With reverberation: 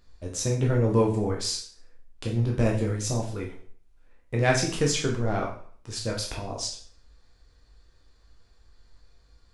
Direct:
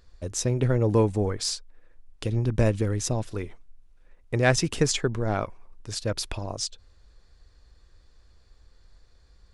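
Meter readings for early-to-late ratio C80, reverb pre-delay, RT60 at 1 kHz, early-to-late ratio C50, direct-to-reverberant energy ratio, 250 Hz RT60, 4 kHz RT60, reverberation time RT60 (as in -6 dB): 11.0 dB, 5 ms, 0.50 s, 6.5 dB, -1.5 dB, 0.50 s, 0.45 s, 0.50 s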